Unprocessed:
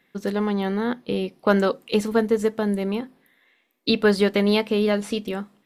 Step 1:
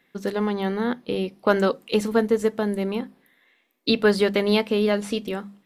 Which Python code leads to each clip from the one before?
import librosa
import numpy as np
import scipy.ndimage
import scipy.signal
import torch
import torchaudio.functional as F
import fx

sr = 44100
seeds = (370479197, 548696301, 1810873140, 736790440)

y = fx.hum_notches(x, sr, base_hz=50, count=4)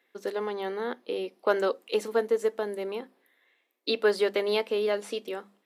y = fx.ladder_highpass(x, sr, hz=290.0, resonance_pct=25)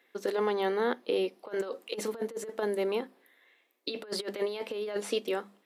y = fx.over_compress(x, sr, threshold_db=-30.0, ratio=-0.5)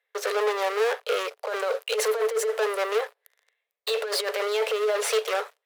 y = fx.leveller(x, sr, passes=5)
y = scipy.signal.sosfilt(scipy.signal.cheby1(6, 3, 420.0, 'highpass', fs=sr, output='sos'), y)
y = y * librosa.db_to_amplitude(-1.0)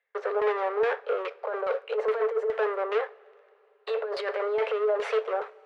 y = fx.filter_lfo_lowpass(x, sr, shape='saw_down', hz=2.4, low_hz=830.0, high_hz=2500.0, q=0.95)
y = fx.rev_double_slope(y, sr, seeds[0], early_s=0.4, late_s=3.4, knee_db=-17, drr_db=15.5)
y = y * librosa.db_to_amplitude(-1.5)